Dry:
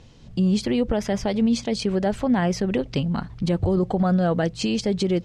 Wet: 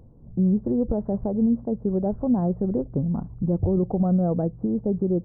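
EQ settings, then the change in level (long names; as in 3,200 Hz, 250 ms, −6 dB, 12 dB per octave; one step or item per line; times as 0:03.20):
Gaussian smoothing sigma 11 samples
0.0 dB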